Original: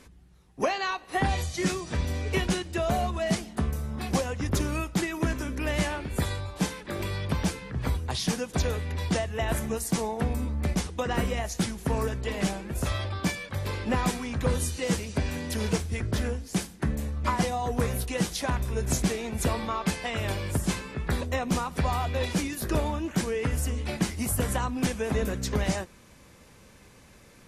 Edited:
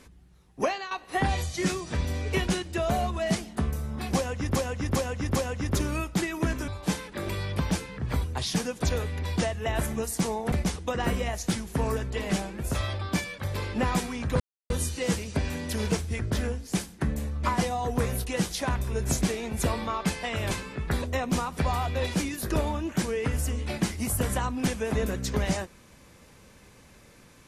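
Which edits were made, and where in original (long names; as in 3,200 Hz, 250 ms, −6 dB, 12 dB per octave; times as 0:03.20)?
0:00.66–0:00.91: fade out, to −13 dB
0:04.16–0:04.56: repeat, 4 plays
0:05.48–0:06.41: remove
0:10.25–0:10.63: remove
0:14.51: splice in silence 0.30 s
0:20.32–0:20.70: remove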